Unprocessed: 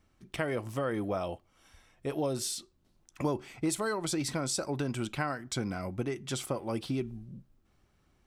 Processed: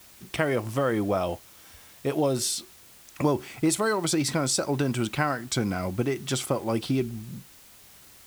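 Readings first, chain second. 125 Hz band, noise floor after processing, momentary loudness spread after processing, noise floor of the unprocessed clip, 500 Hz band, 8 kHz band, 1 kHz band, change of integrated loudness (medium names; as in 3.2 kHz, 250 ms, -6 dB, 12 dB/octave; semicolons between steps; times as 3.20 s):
+7.0 dB, -52 dBFS, 8 LU, -70 dBFS, +7.0 dB, +7.0 dB, +7.0 dB, +7.0 dB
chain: high-pass 51 Hz; added noise white -59 dBFS; trim +7 dB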